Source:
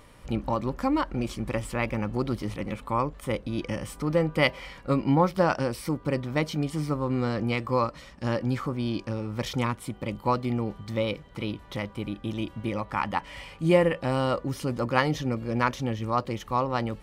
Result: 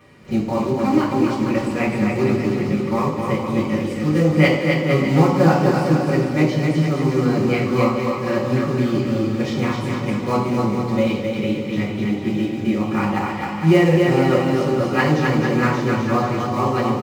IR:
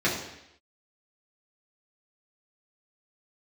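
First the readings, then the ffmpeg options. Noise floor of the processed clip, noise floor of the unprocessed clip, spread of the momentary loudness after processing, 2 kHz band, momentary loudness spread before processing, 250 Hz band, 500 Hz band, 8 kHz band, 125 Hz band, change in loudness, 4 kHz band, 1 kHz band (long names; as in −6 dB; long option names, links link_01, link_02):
−26 dBFS, −49 dBFS, 7 LU, +8.0 dB, 10 LU, +11.0 dB, +8.5 dB, +6.0 dB, +9.5 dB, +9.0 dB, +5.5 dB, +6.0 dB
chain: -filter_complex "[0:a]acrusher=bits=4:mode=log:mix=0:aa=0.000001,aecho=1:1:260|455|601.2|710.9|793.2:0.631|0.398|0.251|0.158|0.1[link_01];[1:a]atrim=start_sample=2205,asetrate=48510,aresample=44100[link_02];[link_01][link_02]afir=irnorm=-1:irlink=0,volume=-8dB"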